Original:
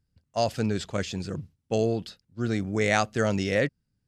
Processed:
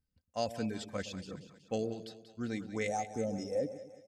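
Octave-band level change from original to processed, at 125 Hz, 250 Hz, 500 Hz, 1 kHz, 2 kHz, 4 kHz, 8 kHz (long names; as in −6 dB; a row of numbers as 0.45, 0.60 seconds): −14.0, −9.5, −9.0, −9.0, −14.5, −11.0, −9.0 decibels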